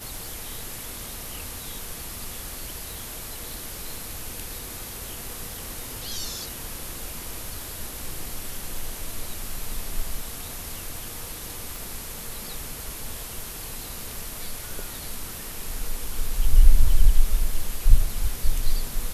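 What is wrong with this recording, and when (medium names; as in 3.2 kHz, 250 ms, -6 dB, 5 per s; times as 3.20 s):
2.94 s: pop
11.76 s: pop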